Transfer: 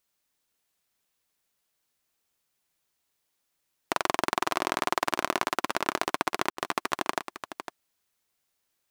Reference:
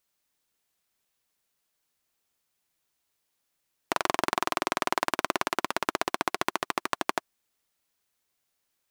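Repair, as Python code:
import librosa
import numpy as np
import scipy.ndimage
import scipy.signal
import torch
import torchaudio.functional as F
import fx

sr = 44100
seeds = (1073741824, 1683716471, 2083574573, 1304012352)

y = fx.fix_ambience(x, sr, seeds[0], print_start_s=0.0, print_end_s=0.5, start_s=6.5, end_s=6.57)
y = fx.fix_echo_inverse(y, sr, delay_ms=505, level_db=-10.5)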